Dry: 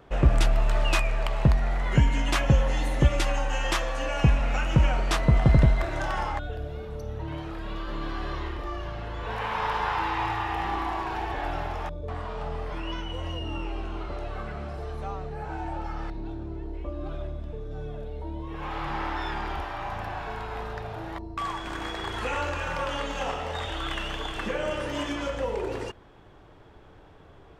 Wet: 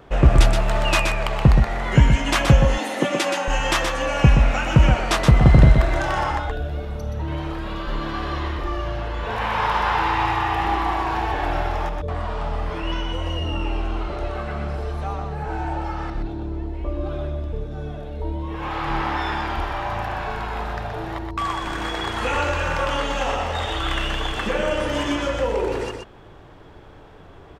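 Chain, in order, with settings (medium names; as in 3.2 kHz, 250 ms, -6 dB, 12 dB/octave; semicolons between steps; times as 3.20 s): 2.65–3.48 s: steep high-pass 190 Hz 36 dB/octave; delay 124 ms -5.5 dB; trim +6 dB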